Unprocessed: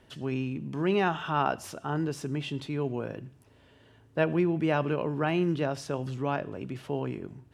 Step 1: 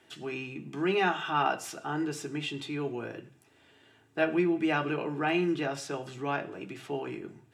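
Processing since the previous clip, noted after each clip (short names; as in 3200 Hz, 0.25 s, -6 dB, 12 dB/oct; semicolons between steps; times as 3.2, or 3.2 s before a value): low shelf 170 Hz -4.5 dB; reverb RT60 0.40 s, pre-delay 3 ms, DRR 5 dB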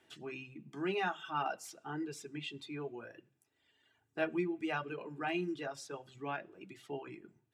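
reverb removal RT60 1.9 s; gain -7 dB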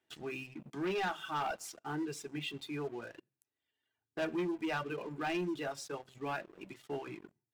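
sample leveller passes 3; gain -8 dB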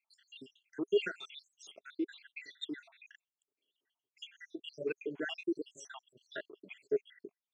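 random spectral dropouts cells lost 81%; speaker cabinet 270–6900 Hz, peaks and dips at 410 Hz +9 dB, 820 Hz -8 dB, 1200 Hz -5 dB, 2300 Hz +4 dB, 3400 Hz +8 dB, 4900 Hz -9 dB; gain +3.5 dB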